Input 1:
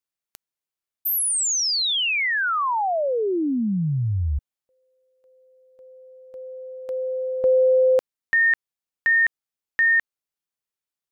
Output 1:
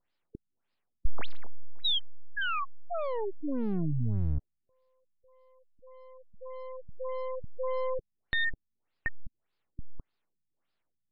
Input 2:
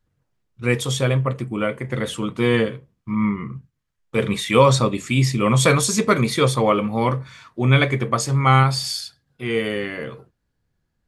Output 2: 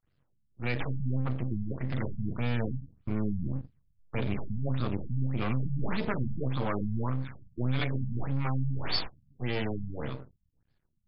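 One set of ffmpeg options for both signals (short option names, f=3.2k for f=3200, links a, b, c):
-filter_complex "[0:a]acrossover=split=160|4500[a][b][c];[a]dynaudnorm=f=110:g=17:m=14dB[d];[b]adynamicequalizer=threshold=0.0251:dfrequency=530:dqfactor=5.1:tfrequency=530:tqfactor=5.1:attack=5:release=100:ratio=0.375:range=2.5:mode=cutabove:tftype=bell[e];[d][e][c]amix=inputs=3:normalize=0,acompressor=threshold=-26dB:ratio=4:attack=5.3:release=22:knee=6,aemphasis=mode=production:type=75fm,aeval=exprs='max(val(0),0)':c=same,afftfilt=real='re*lt(b*sr/1024,230*pow(5300/230,0.5+0.5*sin(2*PI*1.7*pts/sr)))':imag='im*lt(b*sr/1024,230*pow(5300/230,0.5+0.5*sin(2*PI*1.7*pts/sr)))':win_size=1024:overlap=0.75"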